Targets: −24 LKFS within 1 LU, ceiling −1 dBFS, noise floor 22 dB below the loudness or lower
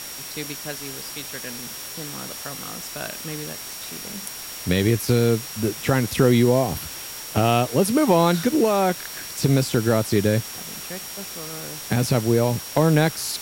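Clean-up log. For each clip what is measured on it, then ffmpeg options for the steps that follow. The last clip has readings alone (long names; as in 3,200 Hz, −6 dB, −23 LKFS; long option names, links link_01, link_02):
interfering tone 5,600 Hz; level of the tone −39 dBFS; background noise floor −35 dBFS; target noise floor −45 dBFS; integrated loudness −23.0 LKFS; sample peak −4.5 dBFS; target loudness −24.0 LKFS
→ -af "bandreject=frequency=5600:width=30"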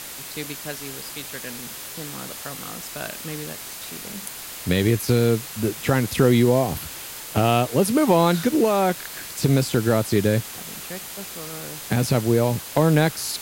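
interfering tone none found; background noise floor −36 dBFS; target noise floor −45 dBFS
→ -af "afftdn=noise_reduction=9:noise_floor=-36"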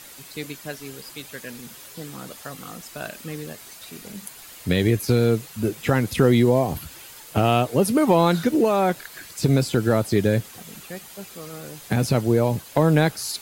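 background noise floor −44 dBFS; integrated loudness −21.0 LKFS; sample peak −5.0 dBFS; target loudness −24.0 LKFS
→ -af "volume=-3dB"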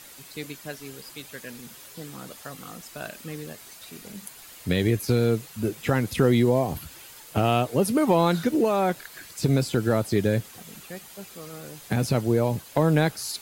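integrated loudness −24.0 LKFS; sample peak −8.0 dBFS; background noise floor −47 dBFS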